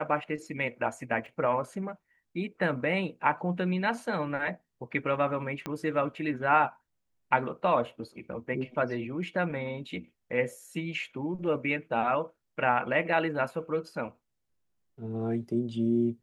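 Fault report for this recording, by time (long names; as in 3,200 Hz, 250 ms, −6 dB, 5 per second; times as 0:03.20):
0:01.26: drop-out 2.6 ms
0:05.66: click −19 dBFS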